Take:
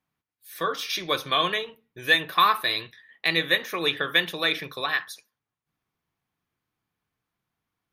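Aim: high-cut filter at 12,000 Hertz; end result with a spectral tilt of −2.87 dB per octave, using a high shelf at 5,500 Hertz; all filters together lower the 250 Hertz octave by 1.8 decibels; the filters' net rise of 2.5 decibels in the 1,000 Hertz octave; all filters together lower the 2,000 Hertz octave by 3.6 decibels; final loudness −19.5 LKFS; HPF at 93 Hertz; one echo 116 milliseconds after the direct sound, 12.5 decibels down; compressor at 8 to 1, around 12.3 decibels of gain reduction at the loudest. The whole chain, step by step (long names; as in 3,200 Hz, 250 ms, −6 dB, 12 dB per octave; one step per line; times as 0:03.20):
high-pass filter 93 Hz
low-pass filter 12,000 Hz
parametric band 250 Hz −3 dB
parametric band 1,000 Hz +4.5 dB
parametric band 2,000 Hz −6.5 dB
high-shelf EQ 5,500 Hz +8.5 dB
downward compressor 8 to 1, threshold −25 dBFS
single-tap delay 116 ms −12.5 dB
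level +10.5 dB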